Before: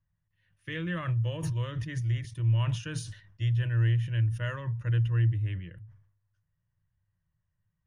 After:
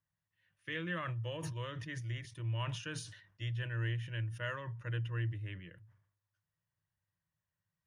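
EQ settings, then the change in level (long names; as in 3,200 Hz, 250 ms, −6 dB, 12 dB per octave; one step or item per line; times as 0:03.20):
high-pass filter 350 Hz 6 dB per octave
high-shelf EQ 6,400 Hz −5 dB
−1.5 dB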